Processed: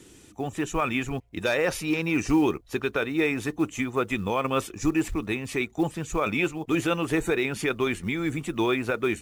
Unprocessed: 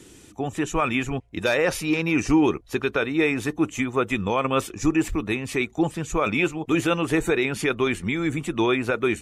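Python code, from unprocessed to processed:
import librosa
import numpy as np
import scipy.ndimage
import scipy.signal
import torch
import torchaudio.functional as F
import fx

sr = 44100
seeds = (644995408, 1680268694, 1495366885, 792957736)

y = fx.quant_float(x, sr, bits=4)
y = F.gain(torch.from_numpy(y), -3.0).numpy()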